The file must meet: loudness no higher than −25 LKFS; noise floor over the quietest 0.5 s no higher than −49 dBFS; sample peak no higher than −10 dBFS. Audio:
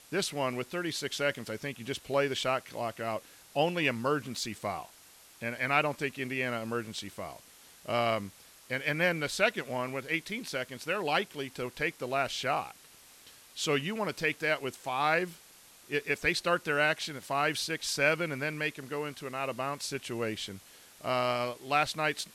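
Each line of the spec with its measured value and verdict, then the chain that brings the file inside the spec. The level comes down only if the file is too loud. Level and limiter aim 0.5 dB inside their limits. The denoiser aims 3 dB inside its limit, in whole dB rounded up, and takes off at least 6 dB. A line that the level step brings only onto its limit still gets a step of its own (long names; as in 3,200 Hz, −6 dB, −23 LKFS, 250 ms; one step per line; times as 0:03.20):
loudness −32.0 LKFS: in spec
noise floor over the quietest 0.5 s −56 dBFS: in spec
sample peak −11.0 dBFS: in spec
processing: no processing needed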